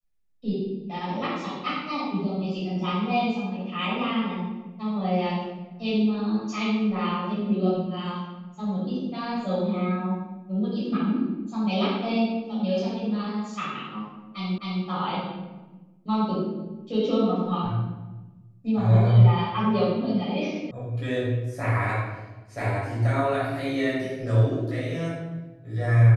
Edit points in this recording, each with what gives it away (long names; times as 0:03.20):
0:14.58: the same again, the last 0.26 s
0:20.71: cut off before it has died away